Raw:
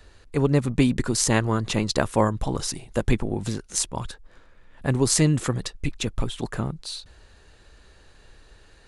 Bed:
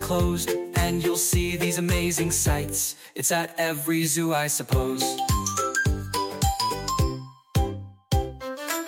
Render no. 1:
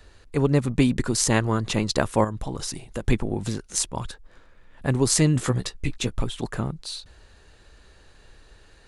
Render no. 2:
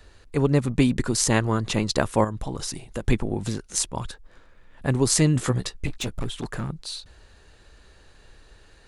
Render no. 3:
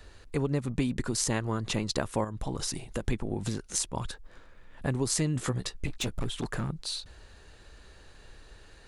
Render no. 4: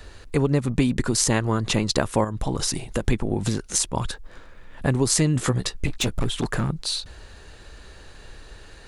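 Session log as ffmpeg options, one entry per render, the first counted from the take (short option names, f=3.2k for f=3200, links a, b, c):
-filter_complex "[0:a]asettb=1/sr,asplit=3[a][b][c];[a]atrim=end=2.244[d];[b]atrim=start=2.24:end=3.04,asetpts=PTS-STARTPTS,afade=t=in:d=0.004:c=qsin,afade=t=out:st=0.796:d=0.004:c=qsin,acompressor=threshold=-27dB:ratio=2.5:attack=3.2:release=140:knee=1:detection=peak[e];[c]atrim=start=3.036[f];[d][e]acrossfade=d=0.004:c1=hsin:c2=qsin[g];[g][f]acrossfade=d=0.004:c1=qsin:c2=hsin,asettb=1/sr,asplit=3[h][i][j];[h]atrim=end=5.344[k];[i]atrim=start=5.34:end=6.18,asetpts=PTS-STARTPTS,afade=t=in:d=0.004:c=qsin,afade=t=out:st=0.836:d=0.004:c=qsin,asplit=2[l][m];[m]adelay=16,volume=-7dB[n];[l][n]amix=inputs=2:normalize=0,atrim=end_sample=37044[o];[j]atrim=start=6.176[p];[k][o]acrossfade=d=0.004:c1=hsin:c2=qsin[q];[q][p]acrossfade=d=0.004:c1=qsin:c2=hsin"
-filter_complex "[0:a]asettb=1/sr,asplit=3[a][b][c];[a]atrim=end=5.864[d];[b]atrim=start=5.86:end=6.7,asetpts=PTS-STARTPTS,afade=t=in:d=0.004:c=qsin,afade=t=out:st=0.836:d=0.004:c=qsin,asoftclip=type=hard:threshold=-23.5dB[e];[c]atrim=start=6.696[f];[d][e]acrossfade=d=0.004:c1=hsin:c2=qsin[g];[g][f]acrossfade=d=0.004:c1=qsin:c2=hsin"
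-af "acompressor=threshold=-29dB:ratio=2.5"
-af "volume=8dB,alimiter=limit=-3dB:level=0:latency=1"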